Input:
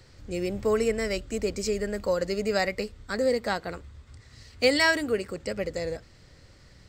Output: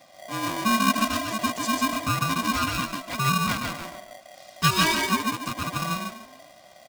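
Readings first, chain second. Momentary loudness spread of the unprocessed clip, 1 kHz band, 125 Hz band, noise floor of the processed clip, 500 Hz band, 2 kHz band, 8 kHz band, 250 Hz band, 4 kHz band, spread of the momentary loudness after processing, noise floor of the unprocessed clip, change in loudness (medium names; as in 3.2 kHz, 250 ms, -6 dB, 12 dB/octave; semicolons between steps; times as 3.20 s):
12 LU, +10.5 dB, +9.0 dB, -51 dBFS, -10.5 dB, +2.0 dB, +8.5 dB, +4.5 dB, +5.5 dB, 12 LU, -54 dBFS, +2.5 dB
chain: comb 2.3 ms, depth 87%; on a send: frequency-shifting echo 143 ms, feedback 33%, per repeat -30 Hz, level -3 dB; on the sum: polarity switched at an audio rate 660 Hz; trim -3 dB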